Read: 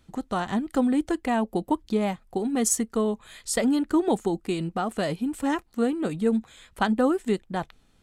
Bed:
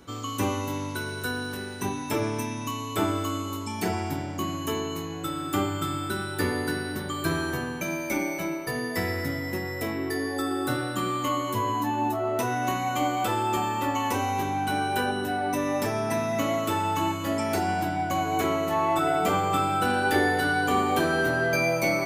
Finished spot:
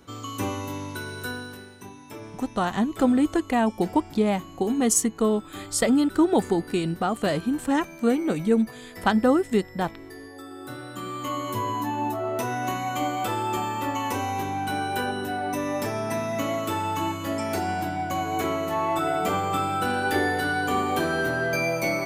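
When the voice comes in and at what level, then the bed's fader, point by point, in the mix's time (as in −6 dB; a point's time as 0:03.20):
2.25 s, +2.5 dB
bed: 0:01.31 −2 dB
0:01.86 −13 dB
0:10.48 −13 dB
0:11.48 −1 dB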